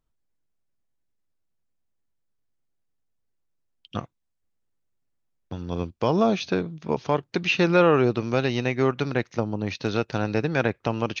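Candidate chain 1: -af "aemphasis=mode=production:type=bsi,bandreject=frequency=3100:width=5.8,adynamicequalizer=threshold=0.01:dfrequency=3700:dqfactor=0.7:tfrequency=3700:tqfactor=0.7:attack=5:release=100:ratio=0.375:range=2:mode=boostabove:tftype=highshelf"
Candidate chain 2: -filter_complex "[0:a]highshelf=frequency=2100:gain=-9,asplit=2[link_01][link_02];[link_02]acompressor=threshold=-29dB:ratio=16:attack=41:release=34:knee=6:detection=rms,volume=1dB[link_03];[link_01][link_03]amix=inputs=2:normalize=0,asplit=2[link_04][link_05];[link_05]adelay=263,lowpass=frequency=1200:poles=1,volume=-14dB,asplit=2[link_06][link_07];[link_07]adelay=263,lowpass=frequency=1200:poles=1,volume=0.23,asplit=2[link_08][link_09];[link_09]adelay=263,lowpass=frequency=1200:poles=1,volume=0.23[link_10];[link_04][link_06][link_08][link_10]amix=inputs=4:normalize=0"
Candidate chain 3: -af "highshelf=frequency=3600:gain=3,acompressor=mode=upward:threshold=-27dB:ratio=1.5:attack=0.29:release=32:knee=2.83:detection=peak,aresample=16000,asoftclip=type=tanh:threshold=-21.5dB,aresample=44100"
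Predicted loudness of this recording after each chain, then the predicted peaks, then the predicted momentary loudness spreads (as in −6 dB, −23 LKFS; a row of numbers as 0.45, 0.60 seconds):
−25.5, −21.5, −29.5 LKFS; −7.0, −5.0, −19.0 dBFS; 17, 14, 13 LU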